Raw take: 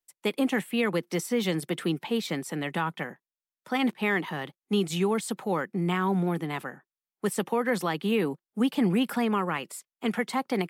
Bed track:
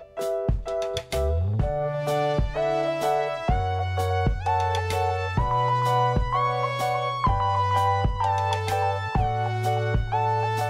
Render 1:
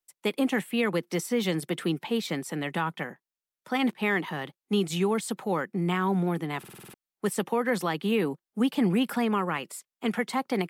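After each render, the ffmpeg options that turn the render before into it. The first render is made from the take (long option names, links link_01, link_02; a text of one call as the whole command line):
ffmpeg -i in.wav -filter_complex "[0:a]asplit=8[link_01][link_02][link_03][link_04][link_05][link_06][link_07][link_08];[link_01]atrim=end=6.642[link_09];[link_02]atrim=start=6.588:end=6.642[link_10];[link_03]atrim=start=6.588:end=6.642[link_11];[link_04]atrim=start=6.588:end=6.642[link_12];[link_05]atrim=start=6.588:end=6.642[link_13];[link_06]atrim=start=6.588:end=6.642[link_14];[link_07]atrim=start=6.588:end=6.642[link_15];[link_08]atrim=start=6.938[link_16];[link_09][link_10]acrossfade=duration=0.004:curve1=hsin:curve2=hsin[link_17];[link_17][link_11]acrossfade=duration=0.004:curve1=hsin:curve2=hsin[link_18];[link_18][link_12]acrossfade=duration=0.004:curve1=hsin:curve2=hsin[link_19];[link_19][link_13]acrossfade=duration=0.004:curve1=hsin:curve2=hsin[link_20];[link_20][link_14]acrossfade=duration=0.004:curve1=hsin:curve2=hsin[link_21];[link_21][link_15]acrossfade=duration=0.004:curve1=hsin:curve2=hsin[link_22];[link_22][link_16]acrossfade=duration=0.004:curve1=hsin:curve2=hsin" out.wav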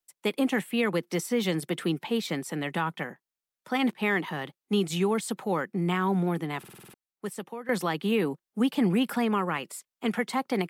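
ffmpeg -i in.wav -filter_complex "[0:a]asplit=2[link_01][link_02];[link_01]atrim=end=7.69,asetpts=PTS-STARTPTS,afade=type=out:start_time=6.43:duration=1.26:silence=0.177828[link_03];[link_02]atrim=start=7.69,asetpts=PTS-STARTPTS,afade=type=in:duration=0.004:curve=hsin:silence=0.177828[link_04];[link_03][link_04]concat=n=2:v=0:a=1" out.wav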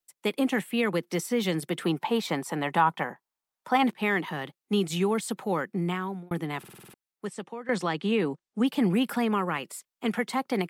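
ffmpeg -i in.wav -filter_complex "[0:a]asettb=1/sr,asplit=3[link_01][link_02][link_03];[link_01]atrim=end=1.844[link_04];[link_02]atrim=start=1.84:end=3.84,asetpts=PTS-STARTPTS,afade=type=in:duration=0.004:curve=qsin,afade=type=out:start_time=1.996:duration=0.004:curve=qsin,equalizer=frequency=910:width=1.4:gain=10.5[link_05];[link_03]atrim=start=3.836[link_06];[link_04][link_05]acrossfade=duration=0.004:curve1=hsin:curve2=qsin[link_07];[link_07][link_06]acrossfade=duration=0.004:curve1=qsin:curve2=hsin,asettb=1/sr,asplit=3[link_08][link_09][link_10];[link_08]atrim=end=7.254[link_11];[link_09]atrim=start=7.25:end=8.66,asetpts=PTS-STARTPTS,afade=type=in:duration=0.004:curve=qsin,afade=type=out:start_time=1.406:duration=0.004:curve=qsin,lowpass=frequency=8500:width=0.5412,lowpass=frequency=8500:width=1.3066[link_12];[link_10]atrim=start=8.656[link_13];[link_11][link_12]acrossfade=duration=0.004:curve1=hsin:curve2=qsin[link_14];[link_14][link_13]acrossfade=duration=0.004:curve1=qsin:curve2=hsin,asplit=2[link_15][link_16];[link_15]atrim=end=6.31,asetpts=PTS-STARTPTS,afade=type=out:start_time=5.78:duration=0.53[link_17];[link_16]atrim=start=6.31,asetpts=PTS-STARTPTS,afade=type=in:duration=0.004:curve=hsin[link_18];[link_17][link_18]concat=n=2:v=0:a=1" out.wav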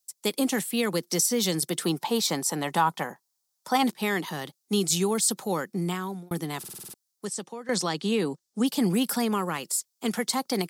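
ffmpeg -i in.wav -af "highshelf=frequency=3600:width_type=q:width=1.5:gain=12" out.wav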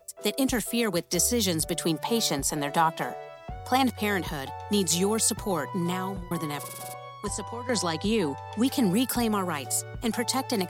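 ffmpeg -i in.wav -i bed.wav -filter_complex "[1:a]volume=-15.5dB[link_01];[0:a][link_01]amix=inputs=2:normalize=0" out.wav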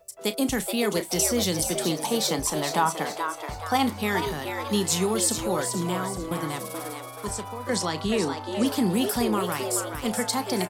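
ffmpeg -i in.wav -filter_complex "[0:a]asplit=2[link_01][link_02];[link_02]adelay=33,volume=-13dB[link_03];[link_01][link_03]amix=inputs=2:normalize=0,asplit=6[link_04][link_05][link_06][link_07][link_08][link_09];[link_05]adelay=427,afreqshift=150,volume=-7dB[link_10];[link_06]adelay=854,afreqshift=300,volume=-14.3dB[link_11];[link_07]adelay=1281,afreqshift=450,volume=-21.7dB[link_12];[link_08]adelay=1708,afreqshift=600,volume=-29dB[link_13];[link_09]adelay=2135,afreqshift=750,volume=-36.3dB[link_14];[link_04][link_10][link_11][link_12][link_13][link_14]amix=inputs=6:normalize=0" out.wav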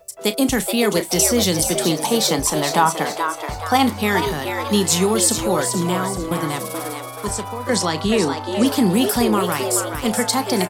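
ffmpeg -i in.wav -af "volume=7dB" out.wav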